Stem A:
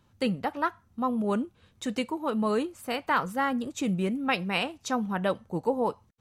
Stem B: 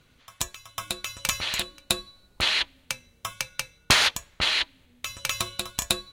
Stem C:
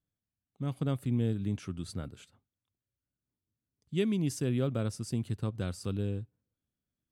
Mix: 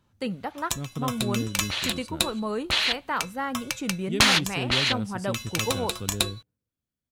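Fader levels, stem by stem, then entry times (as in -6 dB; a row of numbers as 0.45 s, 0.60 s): -3.0 dB, 0.0 dB, -1.0 dB; 0.00 s, 0.30 s, 0.15 s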